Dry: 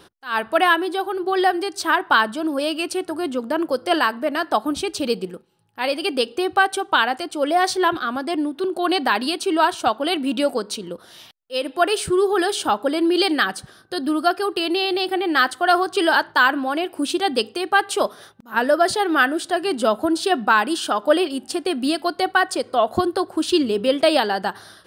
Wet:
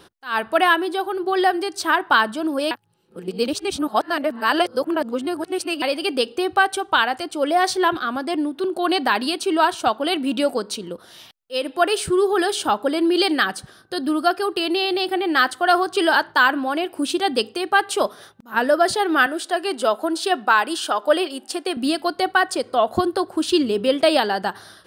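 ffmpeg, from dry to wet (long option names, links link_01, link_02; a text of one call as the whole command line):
ffmpeg -i in.wav -filter_complex "[0:a]asettb=1/sr,asplit=3[link_01][link_02][link_03];[link_01]atrim=end=6.374[link_04];[link_02]atrim=start=6.37:end=7.21,asetpts=PTS-STARTPTS,afade=type=in:duration=0.004:curve=qsin,afade=type=out:start_time=0.836:duration=0.004:curve=qsin,asubboost=boost=12:cutoff=110[link_05];[link_03]atrim=start=7.206[link_06];[link_04][link_05]acrossfade=duration=0.004:curve1=hsin:curve2=qsin[link_07];[link_07][link_06]acrossfade=duration=0.004:curve1=qsin:curve2=hsin,asettb=1/sr,asplit=3[link_08][link_09][link_10];[link_08]atrim=end=19.264[link_11];[link_09]atrim=start=19.26:end=21.77,asetpts=PTS-STARTPTS,afade=type=in:duration=0.004:curve=qsin,afade=type=out:start_time=2.506:duration=0.004:curve=qsin,highpass=360[link_12];[link_10]atrim=start=21.766[link_13];[link_11][link_12]acrossfade=duration=0.004:curve1=hsin:curve2=qsin[link_14];[link_14][link_13]acrossfade=duration=0.004:curve1=qsin:curve2=hsin,asplit=3[link_15][link_16][link_17];[link_15]atrim=end=2.712[link_18];[link_16]atrim=start=2.708:end=5.822,asetpts=PTS-STARTPTS,areverse[link_19];[link_17]atrim=start=5.818[link_20];[link_18][link_19]acrossfade=duration=0.004:curve1=hsin:curve2=hsin[link_21];[link_21][link_20]acrossfade=duration=0.004:curve1=hsin:curve2=hsin" out.wav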